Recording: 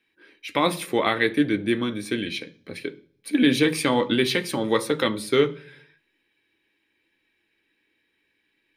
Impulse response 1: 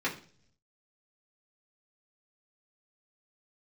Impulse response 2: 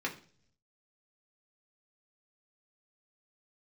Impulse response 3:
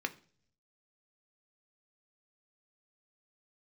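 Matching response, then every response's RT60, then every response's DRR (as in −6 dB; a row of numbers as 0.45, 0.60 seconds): 3; 0.50, 0.50, 0.50 seconds; −7.0, −2.0, 7.0 decibels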